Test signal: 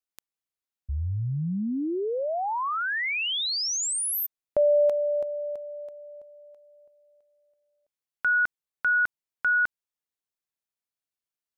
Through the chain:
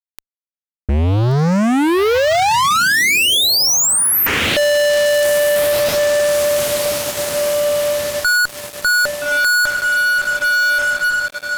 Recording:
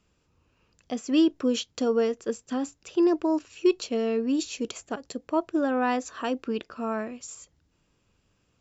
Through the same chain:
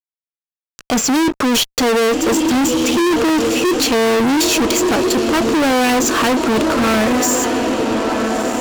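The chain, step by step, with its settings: diffused feedback echo 1.318 s, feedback 50%, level -15 dB; fuzz box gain 44 dB, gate -53 dBFS

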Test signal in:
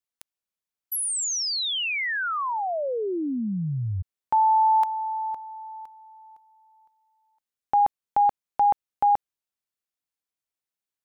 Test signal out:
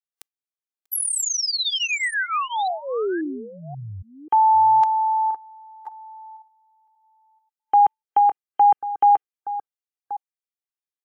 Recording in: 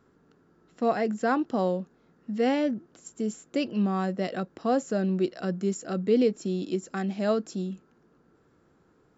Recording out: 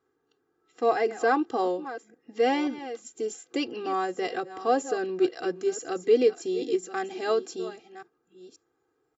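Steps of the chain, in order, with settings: reverse delay 0.535 s, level -13.5 dB; HPF 270 Hz 6 dB/oct; spectral noise reduction 12 dB; comb 2.5 ms, depth 96%

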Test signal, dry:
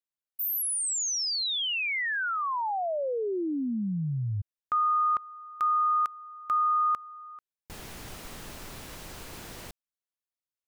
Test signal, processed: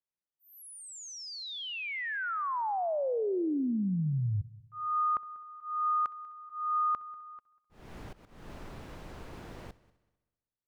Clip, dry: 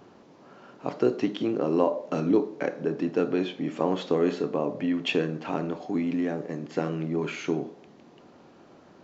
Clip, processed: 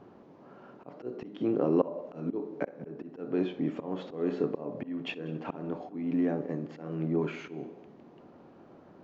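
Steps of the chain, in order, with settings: LPF 1100 Hz 6 dB/oct; auto swell 0.273 s; multi-head echo 64 ms, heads first and third, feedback 43%, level -22 dB

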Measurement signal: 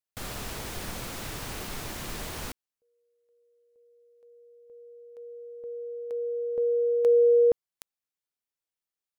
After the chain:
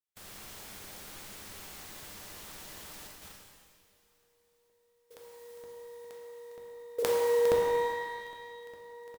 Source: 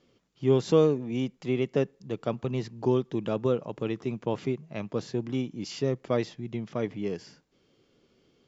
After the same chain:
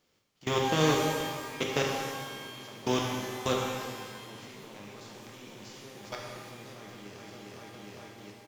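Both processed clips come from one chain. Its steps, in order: spectral contrast lowered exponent 0.51; feedback echo 0.406 s, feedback 58%, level -8.5 dB; level quantiser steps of 24 dB; shimmer reverb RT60 1.6 s, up +12 st, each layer -8 dB, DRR -1.5 dB; gain -3 dB

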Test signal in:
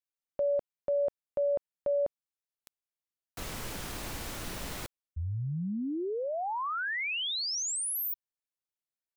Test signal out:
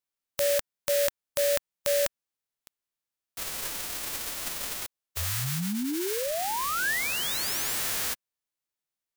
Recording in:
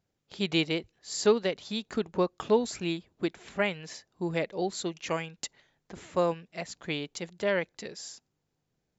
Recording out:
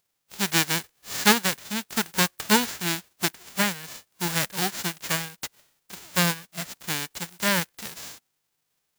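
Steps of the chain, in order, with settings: spectral whitening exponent 0.1; dynamic EQ 1700 Hz, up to +5 dB, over -48 dBFS, Q 3.1; gain +3.5 dB

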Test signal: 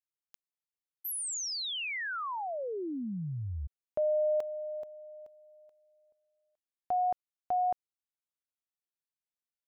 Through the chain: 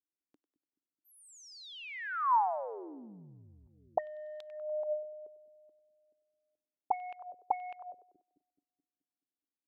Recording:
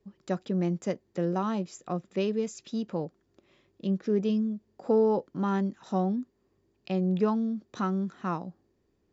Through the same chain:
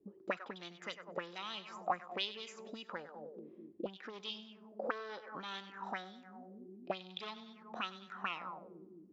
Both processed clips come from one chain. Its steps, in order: sine folder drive 6 dB, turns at -14 dBFS; split-band echo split 340 Hz, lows 0.214 s, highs 97 ms, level -13 dB; auto-wah 290–3600 Hz, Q 5, up, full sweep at -16.5 dBFS; gain +2 dB

